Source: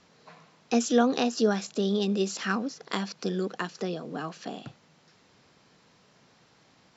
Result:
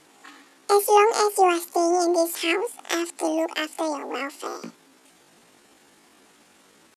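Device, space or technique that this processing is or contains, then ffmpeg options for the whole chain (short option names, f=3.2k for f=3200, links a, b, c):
chipmunk voice: -af "asetrate=76340,aresample=44100,atempo=0.577676,volume=5.5dB"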